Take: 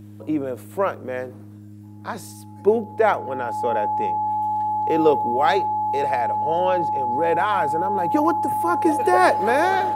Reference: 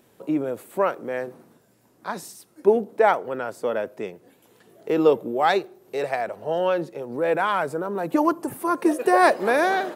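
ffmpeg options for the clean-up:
ffmpeg -i in.wav -af "bandreject=frequency=103.8:width_type=h:width=4,bandreject=frequency=207.6:width_type=h:width=4,bandreject=frequency=311.4:width_type=h:width=4,bandreject=frequency=850:width=30" out.wav

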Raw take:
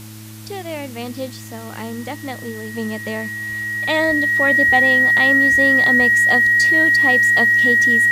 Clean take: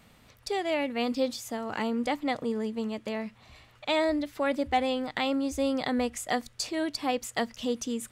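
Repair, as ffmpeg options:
ffmpeg -i in.wav -af "bandreject=frequency=108.1:width_type=h:width=4,bandreject=frequency=216.2:width_type=h:width=4,bandreject=frequency=324.3:width_type=h:width=4,bandreject=frequency=1900:width=30,afwtdn=0.0089,asetnsamples=nb_out_samples=441:pad=0,asendcmd='2.74 volume volume -6.5dB',volume=0dB" out.wav

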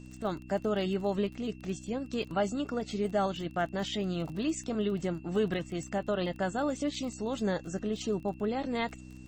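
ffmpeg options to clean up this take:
ffmpeg -i in.wav -af "adeclick=threshold=4,bandreject=frequency=63.2:width_type=h:width=4,bandreject=frequency=126.4:width_type=h:width=4,bandreject=frequency=189.6:width_type=h:width=4,bandreject=frequency=252.8:width_type=h:width=4,bandreject=frequency=316:width_type=h:width=4,bandreject=frequency=2700:width=30" out.wav

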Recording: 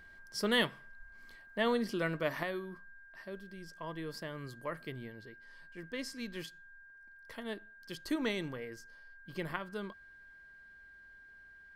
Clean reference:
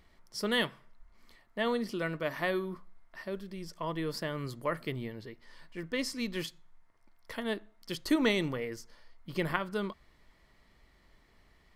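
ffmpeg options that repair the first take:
ffmpeg -i in.wav -af "bandreject=frequency=1600:width=30,asetnsamples=nb_out_samples=441:pad=0,asendcmd='2.43 volume volume 7dB',volume=0dB" out.wav

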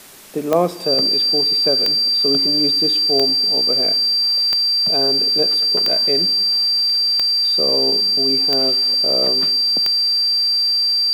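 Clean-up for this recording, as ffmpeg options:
ffmpeg -i in.wav -af "adeclick=threshold=4,bandreject=frequency=4700:width=30,afwtdn=0.0089" out.wav

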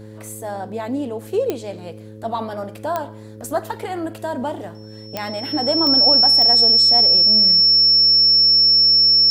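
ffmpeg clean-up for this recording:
ffmpeg -i in.wav -af "adeclick=threshold=4,bandreject=frequency=107.4:width_type=h:width=4,bandreject=frequency=214.8:width_type=h:width=4,bandreject=frequency=322.2:width_type=h:width=4,bandreject=frequency=429.6:width_type=h:width=4,bandreject=frequency=537:width_type=h:width=4,bandreject=frequency=5400:width=30" out.wav

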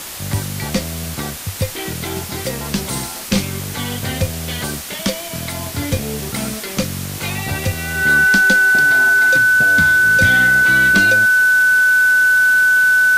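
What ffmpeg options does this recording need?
ffmpeg -i in.wav -af "adeclick=threshold=4,bandreject=frequency=1500:width=30,afftdn=noise_reduction=30:noise_floor=-28" out.wav

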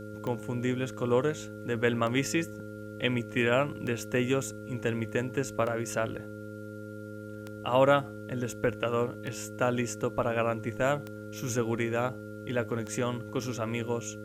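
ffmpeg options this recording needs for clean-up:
ffmpeg -i in.wav -af "adeclick=threshold=4,bandreject=frequency=105.8:width_type=h:width=4,bandreject=frequency=211.6:width_type=h:width=4,bandreject=frequency=317.4:width_type=h:width=4,bandreject=frequency=423.2:width_type=h:width=4,bandreject=frequency=529:width_type=h:width=4,bandreject=frequency=1400:width=30,agate=range=-21dB:threshold=-34dB" out.wav

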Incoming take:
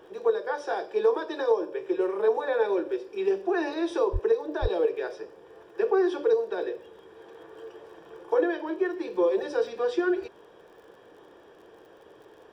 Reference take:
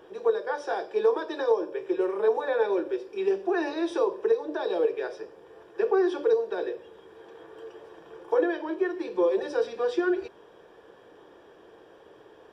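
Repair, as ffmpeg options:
ffmpeg -i in.wav -filter_complex "[0:a]adeclick=threshold=4,asplit=3[link_01][link_02][link_03];[link_01]afade=type=out:start_time=4.12:duration=0.02[link_04];[link_02]highpass=frequency=140:width=0.5412,highpass=frequency=140:width=1.3066,afade=type=in:start_time=4.12:duration=0.02,afade=type=out:start_time=4.24:duration=0.02[link_05];[link_03]afade=type=in:start_time=4.24:duration=0.02[link_06];[link_04][link_05][link_06]amix=inputs=3:normalize=0,asplit=3[link_07][link_08][link_09];[link_07]afade=type=out:start_time=4.61:duration=0.02[link_10];[link_08]highpass=frequency=140:width=0.5412,highpass=frequency=140:width=1.3066,afade=type=in:start_time=4.61:duration=0.02,afade=type=out:start_time=4.73:duration=0.02[link_11];[link_09]afade=type=in:start_time=4.73:duration=0.02[link_12];[link_10][link_11][link_12]amix=inputs=3:normalize=0" out.wav

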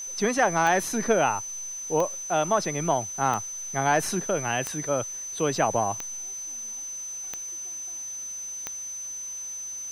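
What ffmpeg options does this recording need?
ffmpeg -i in.wav -af "adeclick=threshold=4,bandreject=frequency=6100:width=30,afwtdn=0.0028" out.wav

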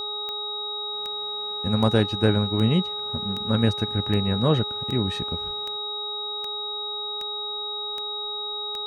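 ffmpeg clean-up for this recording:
ffmpeg -i in.wav -af "adeclick=threshold=4,bandreject=frequency=417.7:width_type=h:width=4,bandreject=frequency=835.4:width_type=h:width=4,bandreject=frequency=1253.1:width_type=h:width=4,bandreject=frequency=3800:width=30" out.wav

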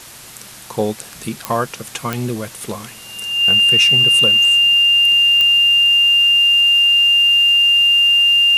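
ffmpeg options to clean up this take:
ffmpeg -i in.wav -af "adeclick=threshold=4,bandreject=frequency=2800:width=30,afwtdn=0.016" out.wav

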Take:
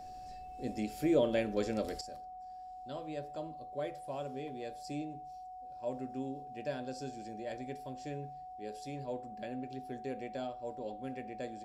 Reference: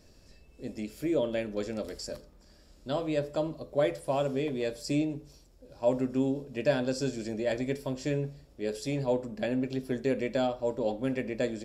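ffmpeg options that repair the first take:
ffmpeg -i in.wav -af "bandreject=frequency=740:width=30,asetnsamples=nb_out_samples=441:pad=0,asendcmd='2.01 volume volume 12dB',volume=0dB" out.wav

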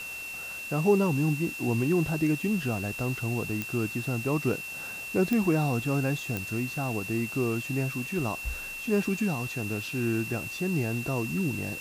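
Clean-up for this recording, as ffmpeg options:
ffmpeg -i in.wav -af "adeclick=threshold=4,bandreject=frequency=2700:width=30,afwtdn=0.0056" out.wav

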